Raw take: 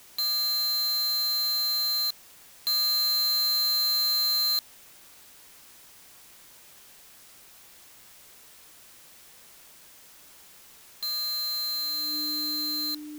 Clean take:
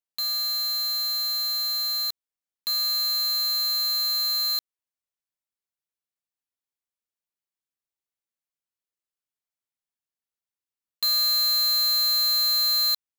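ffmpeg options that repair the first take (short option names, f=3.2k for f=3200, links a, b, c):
-af "bandreject=f=300:w=30,afwtdn=0.0025,asetnsamples=n=441:p=0,asendcmd='10.24 volume volume 8dB',volume=0dB"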